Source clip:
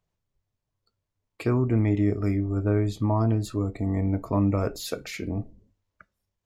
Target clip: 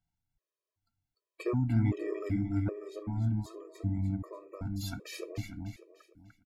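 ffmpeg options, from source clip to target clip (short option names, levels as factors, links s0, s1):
-filter_complex "[0:a]asettb=1/sr,asplit=3[s0][s1][s2];[s0]atrim=end=2.694[s3];[s1]atrim=start=2.69:end=4.81,asetpts=PTS-STARTPTS,afade=t=in:d=0.004:c=qsin,afade=t=out:st=2.116:d=0.004:c=qsin,acrossover=split=220[s4][s5];[s5]acompressor=threshold=0.0112:ratio=4[s6];[s4][s6]amix=inputs=2:normalize=0[s7];[s2]atrim=start=4.806[s8];[s3][s7]acrossfade=d=0.004:c1=hsin:c2=qsin[s9];[s9][s8]acrossfade=d=0.004:c1=qsin:c2=hsin,aecho=1:1:297|594|891|1188|1485:0.501|0.195|0.0762|0.0297|0.0116,afftfilt=real='re*gt(sin(2*PI*1.3*pts/sr)*(1-2*mod(floor(b*sr/1024/330),2)),0)':imag='im*gt(sin(2*PI*1.3*pts/sr)*(1-2*mod(floor(b*sr/1024/330),2)),0)':win_size=1024:overlap=0.75,volume=0.596"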